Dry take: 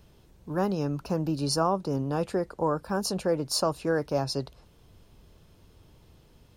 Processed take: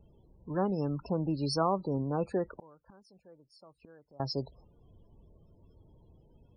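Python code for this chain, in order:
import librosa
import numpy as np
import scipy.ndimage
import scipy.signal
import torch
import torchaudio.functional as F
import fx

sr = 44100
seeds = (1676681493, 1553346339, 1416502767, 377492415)

y = fx.spec_topn(x, sr, count=32)
y = fx.gate_flip(y, sr, shuts_db=-31.0, range_db=-27, at=(2.58, 4.2))
y = y * 10.0 ** (-3.0 / 20.0)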